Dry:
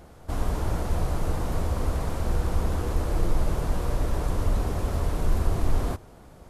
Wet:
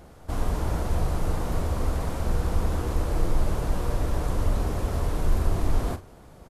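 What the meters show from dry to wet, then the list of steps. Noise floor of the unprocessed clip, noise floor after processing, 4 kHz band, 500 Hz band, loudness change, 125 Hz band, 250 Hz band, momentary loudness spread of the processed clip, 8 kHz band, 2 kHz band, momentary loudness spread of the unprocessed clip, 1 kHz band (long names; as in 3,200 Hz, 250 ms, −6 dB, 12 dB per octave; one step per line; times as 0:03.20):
−49 dBFS, −49 dBFS, +0.5 dB, +0.5 dB, 0.0 dB, 0.0 dB, +0.5 dB, 2 LU, +0.5 dB, +0.5 dB, 2 LU, +0.5 dB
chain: double-tracking delay 42 ms −11.5 dB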